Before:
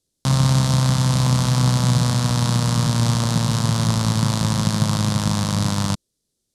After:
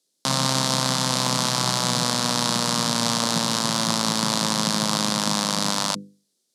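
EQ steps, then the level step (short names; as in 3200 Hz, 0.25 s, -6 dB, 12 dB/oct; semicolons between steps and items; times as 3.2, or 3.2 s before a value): Bessel high-pass 280 Hz, order 8; bell 4600 Hz +3 dB; notches 50/100/150/200/250/300/350/400/450/500 Hz; +2.5 dB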